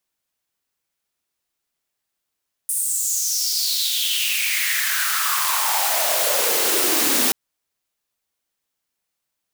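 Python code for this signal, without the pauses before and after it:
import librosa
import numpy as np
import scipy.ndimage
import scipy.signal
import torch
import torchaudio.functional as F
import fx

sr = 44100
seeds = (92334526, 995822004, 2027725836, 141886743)

y = fx.riser_noise(sr, seeds[0], length_s=4.63, colour='white', kind='highpass', start_hz=9600.0, end_hz=240.0, q=5.4, swell_db=9, law='exponential')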